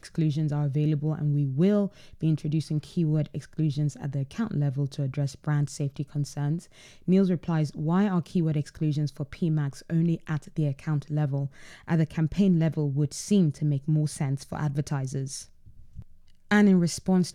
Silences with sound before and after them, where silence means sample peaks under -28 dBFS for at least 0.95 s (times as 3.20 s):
15.38–16.51 s